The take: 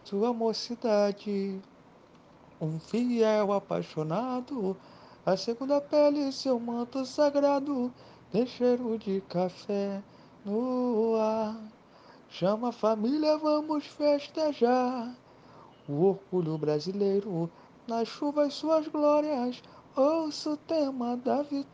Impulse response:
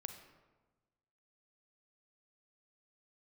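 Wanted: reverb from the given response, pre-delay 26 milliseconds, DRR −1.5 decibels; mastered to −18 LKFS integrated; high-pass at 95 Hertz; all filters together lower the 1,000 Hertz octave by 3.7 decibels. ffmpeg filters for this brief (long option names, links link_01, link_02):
-filter_complex "[0:a]highpass=95,equalizer=frequency=1000:width_type=o:gain=-5,asplit=2[link_01][link_02];[1:a]atrim=start_sample=2205,adelay=26[link_03];[link_02][link_03]afir=irnorm=-1:irlink=0,volume=5dB[link_04];[link_01][link_04]amix=inputs=2:normalize=0,volume=8.5dB"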